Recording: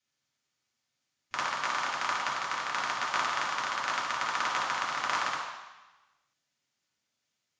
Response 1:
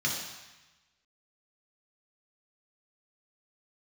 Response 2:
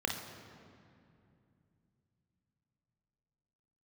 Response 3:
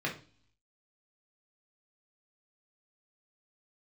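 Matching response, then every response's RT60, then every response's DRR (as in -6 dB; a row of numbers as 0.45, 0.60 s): 1; 1.1, 2.6, 0.40 s; -3.0, 2.0, -3.0 dB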